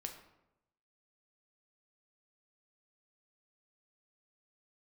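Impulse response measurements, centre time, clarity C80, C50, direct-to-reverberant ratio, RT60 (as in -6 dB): 20 ms, 10.5 dB, 8.0 dB, 3.5 dB, 0.90 s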